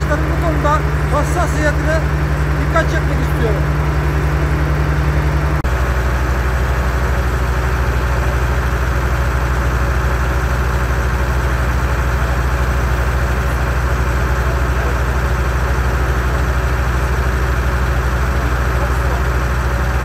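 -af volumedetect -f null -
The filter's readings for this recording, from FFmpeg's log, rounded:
mean_volume: -15.1 dB
max_volume: -1.7 dB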